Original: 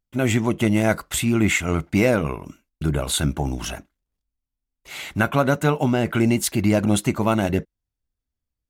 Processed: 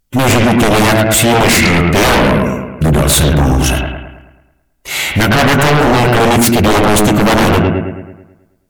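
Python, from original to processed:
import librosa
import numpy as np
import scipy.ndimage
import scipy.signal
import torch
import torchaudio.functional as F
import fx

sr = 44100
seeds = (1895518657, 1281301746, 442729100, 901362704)

y = fx.high_shelf(x, sr, hz=5900.0, db=6.5)
y = fx.echo_bbd(y, sr, ms=108, stages=2048, feedback_pct=50, wet_db=-5.0)
y = fx.hpss(y, sr, part='percussive', gain_db=-7)
y = fx.fold_sine(y, sr, drive_db=15, ceiling_db=-6.0)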